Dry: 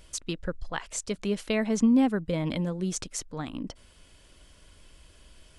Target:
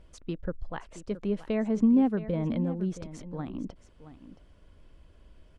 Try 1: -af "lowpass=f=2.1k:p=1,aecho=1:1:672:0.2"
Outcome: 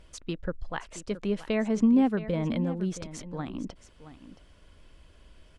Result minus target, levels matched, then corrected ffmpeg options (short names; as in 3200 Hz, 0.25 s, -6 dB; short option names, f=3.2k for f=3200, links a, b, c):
2000 Hz band +5.5 dB
-af "lowpass=f=740:p=1,aecho=1:1:672:0.2"